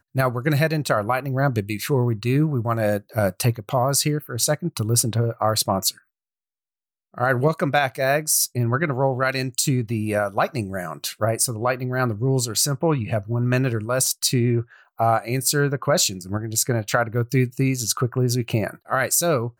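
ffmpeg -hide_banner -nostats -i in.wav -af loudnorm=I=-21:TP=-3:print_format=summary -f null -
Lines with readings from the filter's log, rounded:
Input Integrated:    -22.0 LUFS
Input True Peak:      -5.5 dBTP
Input LRA:             1.8 LU
Input Threshold:     -32.0 LUFS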